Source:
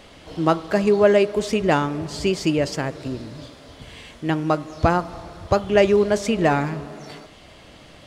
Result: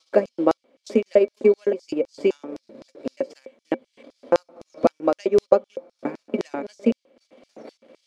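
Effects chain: slices in reverse order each 0.288 s, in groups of 3; transient shaper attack +5 dB, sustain -12 dB; high shelf 3200 Hz -11 dB; small resonant body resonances 240/530/2300 Hz, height 17 dB, ringing for 95 ms; LFO high-pass square 3.9 Hz 380–5300 Hz; gain -8 dB

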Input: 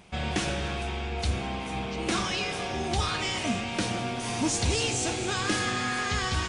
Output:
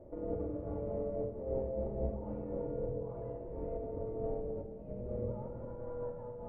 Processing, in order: negative-ratio compressor -33 dBFS, ratio -0.5; HPF 530 Hz 6 dB/oct; limiter -28.5 dBFS, peak gain reduction 8 dB; Chebyshev low-pass 840 Hz, order 4; tilt +2 dB/oct; reverb RT60 2.0 s, pre-delay 3 ms, DRR -0.5 dB; frequency shift -260 Hz; noise-modulated level, depth 60%; gain +7 dB

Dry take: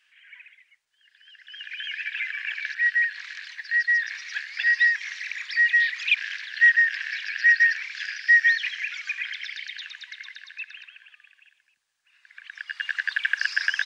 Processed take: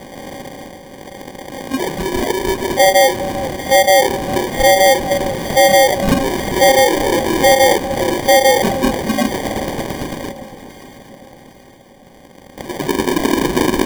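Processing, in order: per-bin compression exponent 0.2; 10.32–12.58 differentiator; spectral noise reduction 21 dB; treble ducked by the level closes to 2700 Hz, closed at -12.5 dBFS; in parallel at -8 dB: sine folder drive 9 dB, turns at -4.5 dBFS; on the sum: sample-and-hold 33×; echo with dull and thin repeats by turns 0.401 s, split 970 Hz, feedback 63%, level -12.5 dB

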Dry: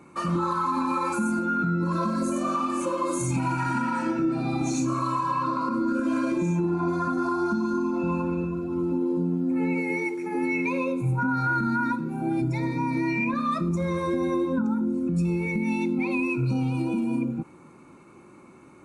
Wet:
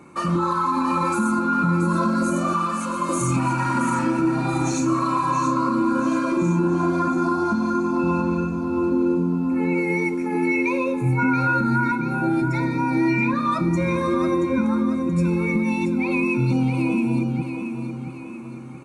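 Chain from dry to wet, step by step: 2.53–3.09 Chebyshev high-pass 1000 Hz, order 2; feedback echo 0.678 s, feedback 45%, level -8 dB; gain +4 dB

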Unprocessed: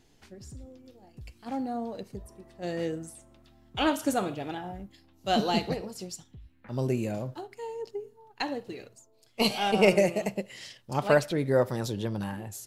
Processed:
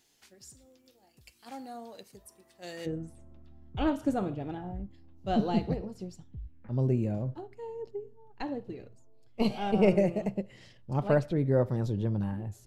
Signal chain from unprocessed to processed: tilt +3 dB/oct, from 2.85 s -3.5 dB/oct; gain -6.5 dB

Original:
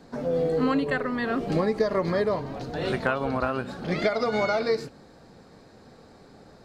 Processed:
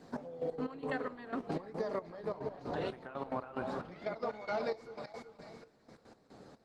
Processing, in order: echo with dull and thin repeats by turns 0.188 s, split 950 Hz, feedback 59%, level -7 dB; compressor 16:1, threshold -28 dBFS, peak gain reduction 11.5 dB; dynamic EQ 840 Hz, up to +6 dB, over -52 dBFS, Q 2.7; HPF 130 Hz 6 dB/oct; 2.37–4.4 high shelf 3500 Hz -4 dB; step gate "xx...x.x..x" 181 bpm -12 dB; gain -3.5 dB; Opus 16 kbps 48000 Hz

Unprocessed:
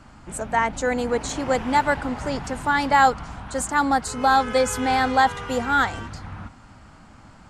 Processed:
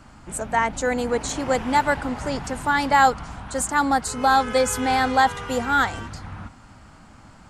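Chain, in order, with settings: high shelf 9100 Hz +6.5 dB

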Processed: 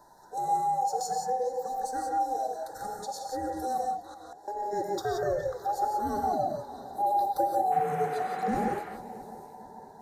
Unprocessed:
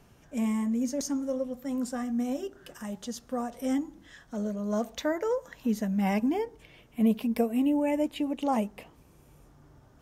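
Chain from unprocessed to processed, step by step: band inversion scrambler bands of 1000 Hz; elliptic band-stop 1700–3900 Hz, stop band 60 dB; on a send: multi-head echo 0.223 s, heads second and third, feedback 54%, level -21.5 dB; 3.87–4.48 on the sum: flipped gate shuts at -37 dBFS, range -25 dB; 7.71–8.78 band noise 220–1900 Hz -42 dBFS; in parallel at -1 dB: compressor, threshold -39 dBFS, peak gain reduction 17.5 dB; on the sum: non-linear reverb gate 0.2 s rising, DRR 1.5 dB; warbling echo 0.41 s, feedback 30%, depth 171 cents, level -21 dB; gain -4 dB

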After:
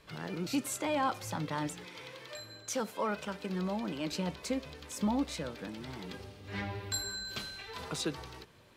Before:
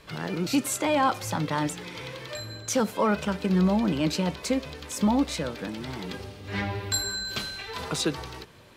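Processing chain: 1.85–4.12 low shelf 180 Hz -11.5 dB; gain -8 dB

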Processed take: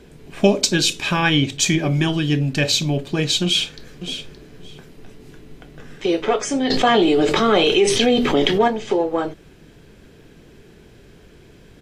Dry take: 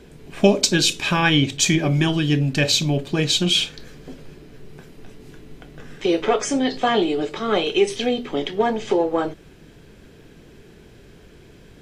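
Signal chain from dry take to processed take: 3.44–4.09 echo throw 0.57 s, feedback 15%, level -10 dB; 6.7–8.68 fast leveller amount 70%

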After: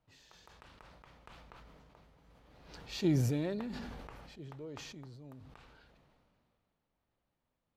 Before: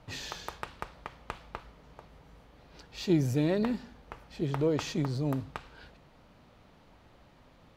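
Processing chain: Doppler pass-by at 2.8, 7 m/s, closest 1.4 m; sustainer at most 23 dB/s

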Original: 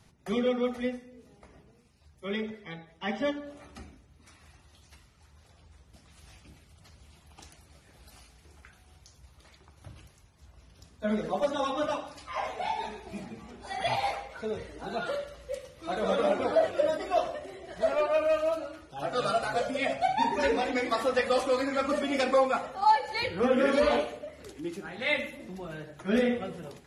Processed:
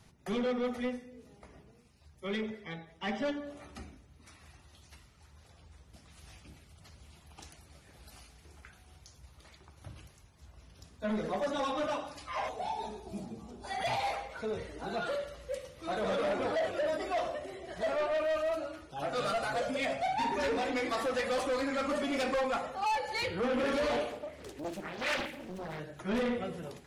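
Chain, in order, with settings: 12.49–13.64 bell 2000 Hz -14.5 dB 1.2 oct; soft clip -27.5 dBFS, distortion -9 dB; 24.1–25.8 Doppler distortion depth 0.91 ms

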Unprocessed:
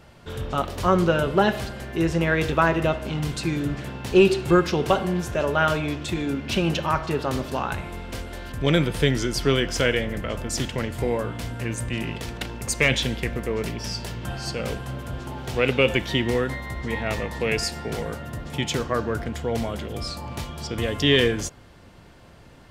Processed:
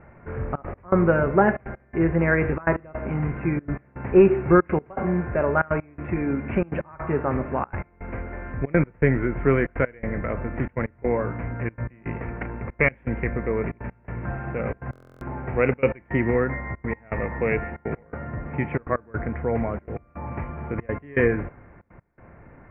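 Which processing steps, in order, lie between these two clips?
steep low-pass 2300 Hz 72 dB/oct; step gate "xxxxxx.x..x" 163 bpm -24 dB; stuck buffer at 14.91, samples 1024, times 12; gain +1.5 dB

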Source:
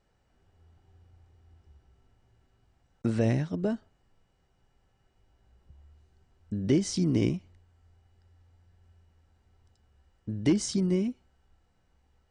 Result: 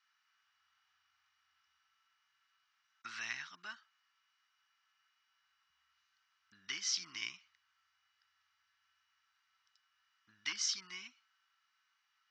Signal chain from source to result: elliptic band-pass 1200–5900 Hz, stop band 40 dB; gain +2.5 dB

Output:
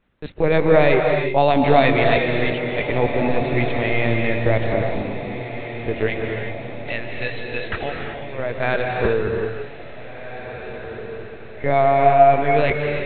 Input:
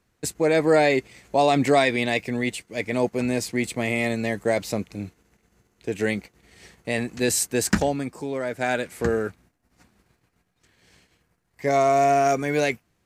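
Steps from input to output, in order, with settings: 6.07–8.39 HPF 1300 Hz 6 dB/oct; LPC vocoder at 8 kHz pitch kept; diffused feedback echo 1.79 s, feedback 50%, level -11 dB; reverb, pre-delay 0.141 s, DRR 2 dB; gain +3 dB

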